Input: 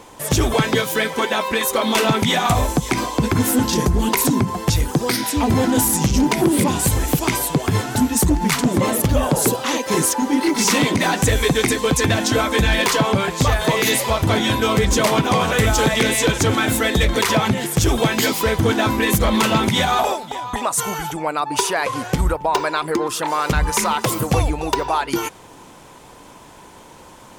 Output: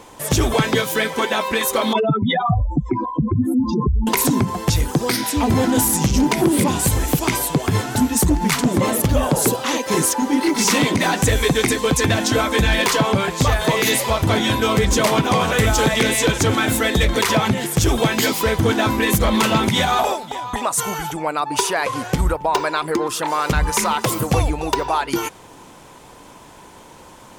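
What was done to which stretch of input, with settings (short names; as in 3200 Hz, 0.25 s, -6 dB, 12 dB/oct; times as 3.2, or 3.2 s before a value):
1.93–4.07 spectral contrast raised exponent 3.3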